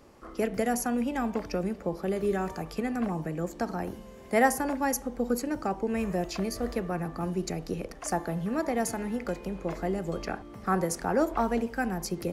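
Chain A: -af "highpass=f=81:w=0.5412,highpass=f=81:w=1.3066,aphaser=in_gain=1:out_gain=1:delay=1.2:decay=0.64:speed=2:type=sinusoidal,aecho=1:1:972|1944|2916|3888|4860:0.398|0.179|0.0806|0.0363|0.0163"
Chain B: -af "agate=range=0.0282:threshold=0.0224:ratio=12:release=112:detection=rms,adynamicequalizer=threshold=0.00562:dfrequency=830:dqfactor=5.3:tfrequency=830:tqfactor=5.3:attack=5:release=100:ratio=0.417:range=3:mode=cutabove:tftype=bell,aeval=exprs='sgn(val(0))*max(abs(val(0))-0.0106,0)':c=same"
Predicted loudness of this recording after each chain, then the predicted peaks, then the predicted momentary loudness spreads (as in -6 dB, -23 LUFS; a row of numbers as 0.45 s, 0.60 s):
-26.5 LUFS, -32.5 LUFS; -6.5 dBFS, -12.0 dBFS; 7 LU, 9 LU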